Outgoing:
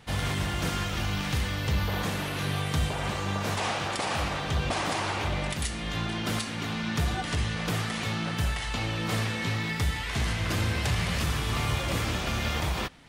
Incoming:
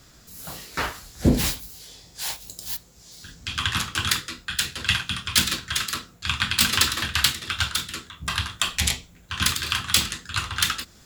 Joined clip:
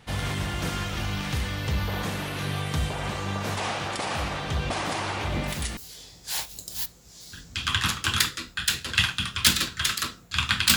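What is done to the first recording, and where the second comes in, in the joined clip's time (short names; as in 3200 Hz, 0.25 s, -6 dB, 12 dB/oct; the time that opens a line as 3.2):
outgoing
5.25 add incoming from 1.16 s 0.52 s -16 dB
5.77 switch to incoming from 1.68 s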